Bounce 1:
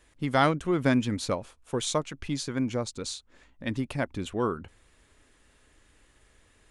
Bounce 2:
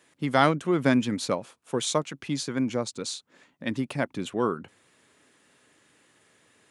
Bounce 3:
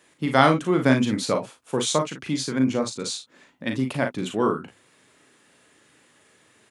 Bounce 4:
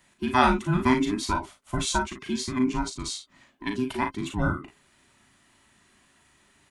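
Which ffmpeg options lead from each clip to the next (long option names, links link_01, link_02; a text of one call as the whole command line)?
ffmpeg -i in.wav -af "highpass=frequency=130:width=0.5412,highpass=frequency=130:width=1.3066,volume=2dB" out.wav
ffmpeg -i in.wav -af "aecho=1:1:38|54:0.501|0.299,volume=2.5dB" out.wav
ffmpeg -i in.wav -af "afftfilt=real='real(if(between(b,1,1008),(2*floor((b-1)/24)+1)*24-b,b),0)':imag='imag(if(between(b,1,1008),(2*floor((b-1)/24)+1)*24-b,b),0)*if(between(b,1,1008),-1,1)':win_size=2048:overlap=0.75,volume=-3dB" out.wav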